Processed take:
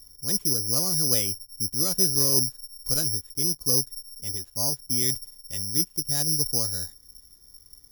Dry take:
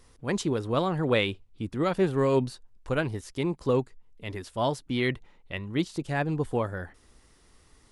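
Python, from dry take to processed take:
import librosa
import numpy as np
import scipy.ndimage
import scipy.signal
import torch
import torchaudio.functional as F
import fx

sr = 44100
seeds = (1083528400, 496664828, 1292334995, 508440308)

y = fx.low_shelf(x, sr, hz=270.0, db=12.0)
y = (np.kron(scipy.signal.resample_poly(y, 1, 8), np.eye(8)[0]) * 8)[:len(y)]
y = F.gain(torch.from_numpy(y), -12.5).numpy()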